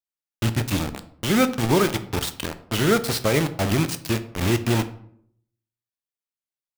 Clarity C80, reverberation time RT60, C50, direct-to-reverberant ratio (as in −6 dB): 17.5 dB, 0.65 s, 14.5 dB, 9.5 dB